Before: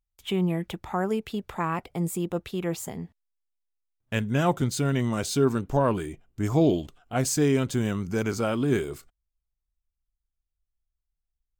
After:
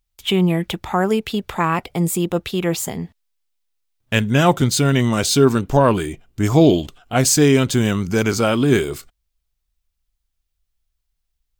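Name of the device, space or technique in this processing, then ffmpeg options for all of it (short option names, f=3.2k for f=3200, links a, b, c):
presence and air boost: -af "equalizer=f=3.7k:t=o:w=1.7:g=5,highshelf=f=11k:g=4.5,volume=8.5dB"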